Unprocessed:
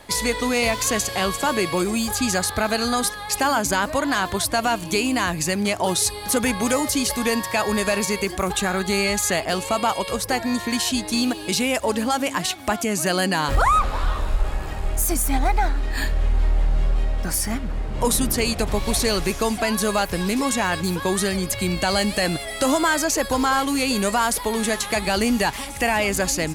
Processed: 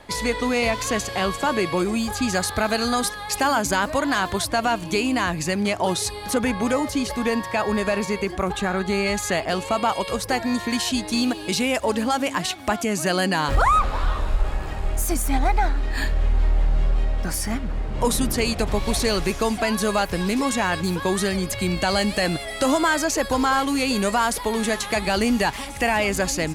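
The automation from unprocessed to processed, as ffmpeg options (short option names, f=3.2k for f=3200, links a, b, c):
-af "asetnsamples=n=441:p=0,asendcmd='2.34 lowpass f 8200;4.45 lowpass f 4300;6.34 lowpass f 2200;9.06 lowpass f 3800;9.92 lowpass f 6400',lowpass=f=3.6k:p=1"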